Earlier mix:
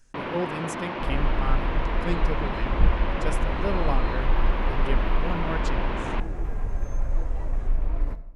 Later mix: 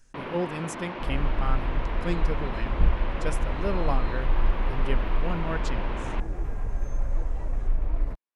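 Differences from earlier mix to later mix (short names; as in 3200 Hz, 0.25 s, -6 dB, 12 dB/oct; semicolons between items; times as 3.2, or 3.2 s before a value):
first sound -3.5 dB; reverb: off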